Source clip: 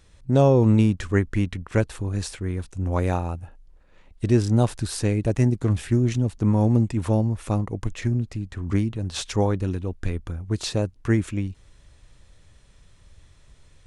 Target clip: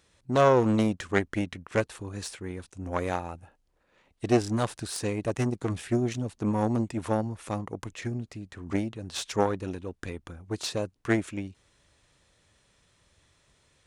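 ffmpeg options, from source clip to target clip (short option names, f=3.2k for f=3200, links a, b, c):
-af "aeval=exprs='0.501*(cos(1*acos(clip(val(0)/0.501,-1,1)))-cos(1*PI/2))+0.251*(cos(2*acos(clip(val(0)/0.501,-1,1)))-cos(2*PI/2))+0.0251*(cos(7*acos(clip(val(0)/0.501,-1,1)))-cos(7*PI/2))':c=same,highpass=f=260:p=1"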